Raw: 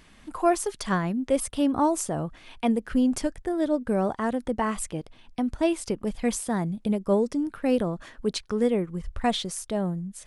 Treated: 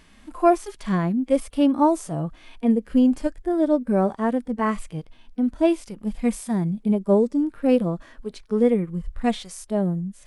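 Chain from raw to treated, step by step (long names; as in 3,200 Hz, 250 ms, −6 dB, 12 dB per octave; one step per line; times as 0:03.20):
dynamic equaliser 2,300 Hz, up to +4 dB, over −55 dBFS, Q 7.2
harmonic and percussive parts rebalanced percussive −18 dB
level +5 dB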